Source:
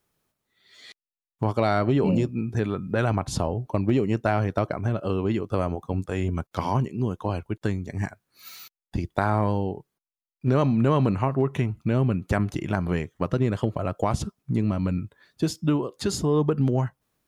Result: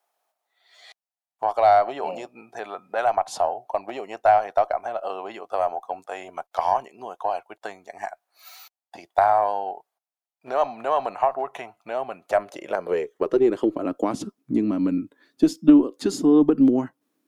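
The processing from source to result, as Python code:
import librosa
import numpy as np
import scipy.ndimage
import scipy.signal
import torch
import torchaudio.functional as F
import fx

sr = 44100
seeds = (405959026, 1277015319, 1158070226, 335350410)

y = fx.filter_sweep_highpass(x, sr, from_hz=720.0, to_hz=280.0, start_s=12.12, end_s=13.92, q=5.7)
y = fx.cheby_harmonics(y, sr, harmonics=(2, 4, 6), levels_db=(-19, -32, -39), full_scale_db=-1.0)
y = y * 10.0 ** (-2.5 / 20.0)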